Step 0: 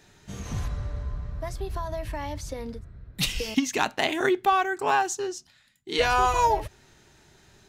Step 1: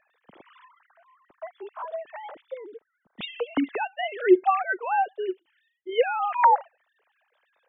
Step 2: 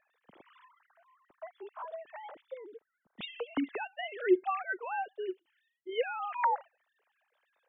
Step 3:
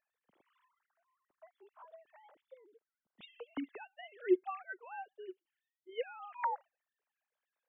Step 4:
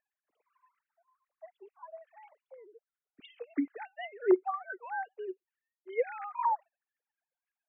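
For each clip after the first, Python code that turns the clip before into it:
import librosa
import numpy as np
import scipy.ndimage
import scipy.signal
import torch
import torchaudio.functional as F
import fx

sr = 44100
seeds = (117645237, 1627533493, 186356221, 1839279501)

y1 = fx.sine_speech(x, sr)
y2 = fx.dynamic_eq(y1, sr, hz=720.0, q=1.1, threshold_db=-33.0, ratio=4.0, max_db=-6)
y2 = y2 * librosa.db_to_amplitude(-6.5)
y3 = fx.upward_expand(y2, sr, threshold_db=-44.0, expansion=1.5)
y3 = y3 * librosa.db_to_amplitude(-3.0)
y4 = fx.sine_speech(y3, sr)
y4 = y4 * librosa.db_to_amplitude(6.0)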